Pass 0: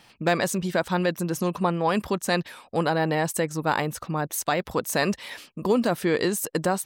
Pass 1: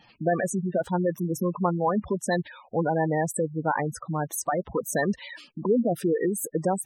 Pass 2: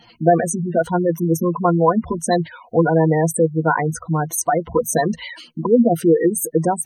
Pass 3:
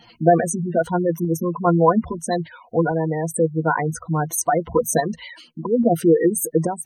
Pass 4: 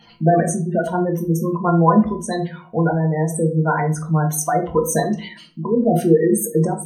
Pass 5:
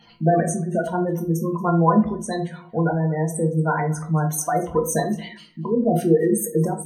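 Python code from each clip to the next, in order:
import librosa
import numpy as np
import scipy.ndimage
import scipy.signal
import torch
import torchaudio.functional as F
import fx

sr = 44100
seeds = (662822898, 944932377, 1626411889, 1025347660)

y1 = fx.spec_gate(x, sr, threshold_db=-10, keep='strong')
y2 = fx.ripple_eq(y1, sr, per_octave=1.9, db=12)
y2 = F.gain(torch.from_numpy(y2), 6.0).numpy()
y3 = fx.tremolo_random(y2, sr, seeds[0], hz=2.4, depth_pct=55)
y4 = fx.room_shoebox(y3, sr, seeds[1], volume_m3=290.0, walls='furnished', distance_m=1.3)
y4 = F.gain(torch.from_numpy(y4), -1.0).numpy()
y5 = y4 + 10.0 ** (-22.5 / 20.0) * np.pad(y4, (int(231 * sr / 1000.0), 0))[:len(y4)]
y5 = F.gain(torch.from_numpy(y5), -3.0).numpy()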